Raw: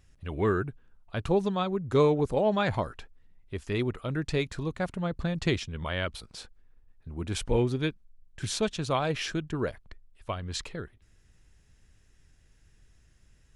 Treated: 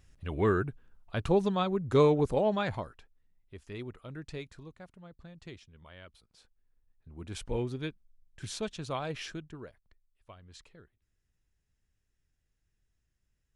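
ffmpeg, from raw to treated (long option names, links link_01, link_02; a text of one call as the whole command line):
ffmpeg -i in.wav -af "volume=12dB,afade=type=out:start_time=2.27:duration=0.7:silence=0.266073,afade=type=out:start_time=4.32:duration=0.56:silence=0.398107,afade=type=in:start_time=6.3:duration=1.2:silence=0.237137,afade=type=out:start_time=9.23:duration=0.46:silence=0.298538" out.wav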